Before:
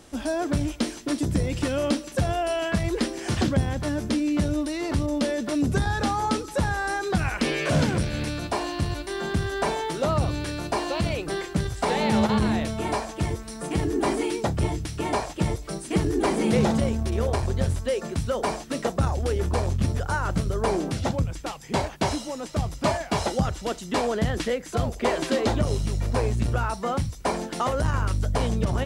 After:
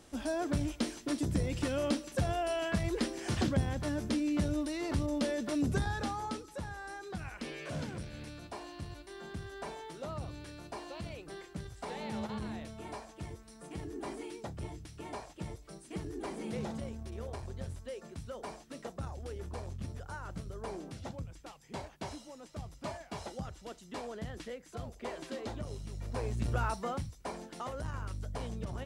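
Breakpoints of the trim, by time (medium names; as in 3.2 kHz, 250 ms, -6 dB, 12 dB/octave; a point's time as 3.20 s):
5.72 s -7.5 dB
6.63 s -17 dB
25.86 s -17 dB
26.68 s -5.5 dB
27.18 s -15 dB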